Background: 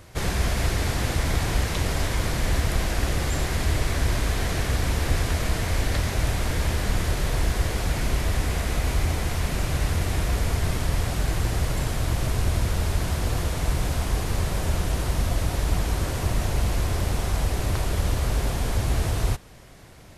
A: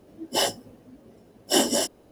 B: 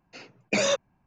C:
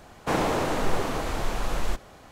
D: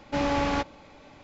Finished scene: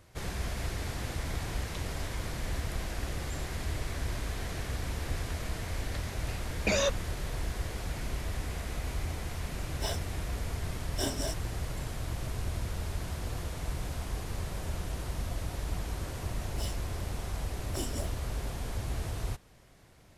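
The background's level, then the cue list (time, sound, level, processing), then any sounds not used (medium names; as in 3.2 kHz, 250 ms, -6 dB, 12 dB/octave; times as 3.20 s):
background -11 dB
6.14 s: add B -4 dB
9.47 s: add A -13.5 dB + rippled EQ curve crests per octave 1.6, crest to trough 8 dB
16.23 s: add A -15 dB + lamp-driven phase shifter 1.7 Hz
not used: C, D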